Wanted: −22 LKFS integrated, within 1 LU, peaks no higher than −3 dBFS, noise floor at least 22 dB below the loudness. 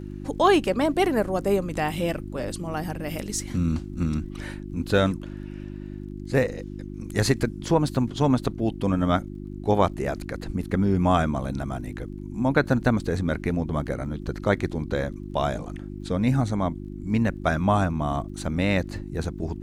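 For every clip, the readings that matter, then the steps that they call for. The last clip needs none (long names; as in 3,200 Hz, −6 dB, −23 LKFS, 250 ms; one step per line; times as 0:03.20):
crackle rate 24 per second; mains hum 50 Hz; hum harmonics up to 350 Hz; level of the hum −33 dBFS; integrated loudness −25.5 LKFS; sample peak −6.0 dBFS; target loudness −22.0 LKFS
→ click removal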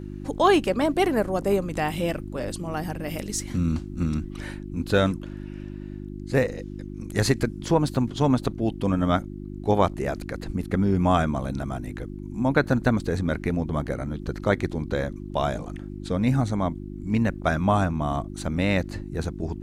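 crackle rate 0.051 per second; mains hum 50 Hz; hum harmonics up to 350 Hz; level of the hum −33 dBFS
→ hum removal 50 Hz, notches 7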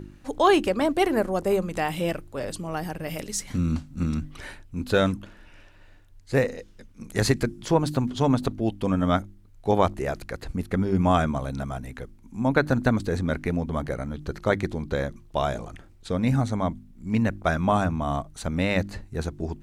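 mains hum none found; integrated loudness −26.0 LKFS; sample peak −6.0 dBFS; target loudness −22.0 LKFS
→ level +4 dB
brickwall limiter −3 dBFS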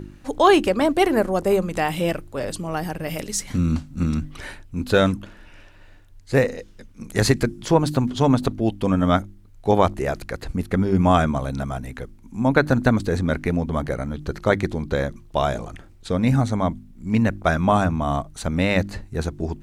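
integrated loudness −22.0 LKFS; sample peak −3.0 dBFS; background noise floor −47 dBFS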